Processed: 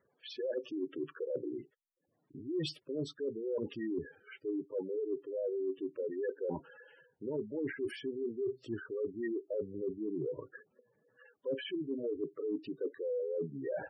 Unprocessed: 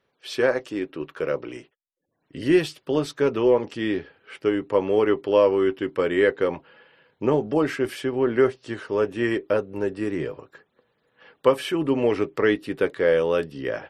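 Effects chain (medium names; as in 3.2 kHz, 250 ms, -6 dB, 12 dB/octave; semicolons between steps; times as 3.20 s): spectral gate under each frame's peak -10 dB strong; reverse; compression 12:1, threshold -32 dBFS, peak gain reduction 19 dB; reverse; trim -1.5 dB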